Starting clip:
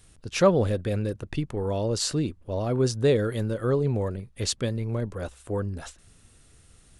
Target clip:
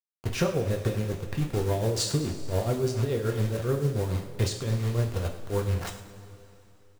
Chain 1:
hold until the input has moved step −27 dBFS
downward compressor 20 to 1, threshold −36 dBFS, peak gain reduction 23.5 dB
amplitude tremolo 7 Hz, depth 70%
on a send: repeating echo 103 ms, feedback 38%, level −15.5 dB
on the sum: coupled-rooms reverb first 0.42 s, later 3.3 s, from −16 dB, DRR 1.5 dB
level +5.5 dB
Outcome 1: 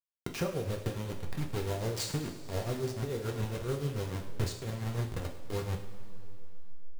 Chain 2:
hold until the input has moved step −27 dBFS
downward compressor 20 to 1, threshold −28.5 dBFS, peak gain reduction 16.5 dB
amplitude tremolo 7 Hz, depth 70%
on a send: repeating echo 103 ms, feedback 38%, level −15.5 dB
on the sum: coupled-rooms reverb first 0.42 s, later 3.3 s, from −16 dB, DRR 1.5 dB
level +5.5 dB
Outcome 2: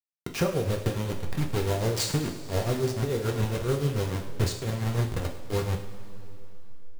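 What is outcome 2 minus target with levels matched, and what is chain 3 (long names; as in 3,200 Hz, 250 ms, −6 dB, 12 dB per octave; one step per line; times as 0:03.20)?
hold until the input has moved: distortion +7 dB
hold until the input has moved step −34 dBFS
downward compressor 20 to 1, threshold −28.5 dBFS, peak gain reduction 16.5 dB
amplitude tremolo 7 Hz, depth 70%
on a send: repeating echo 103 ms, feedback 38%, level −15.5 dB
on the sum: coupled-rooms reverb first 0.42 s, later 3.3 s, from −16 dB, DRR 1.5 dB
level +5.5 dB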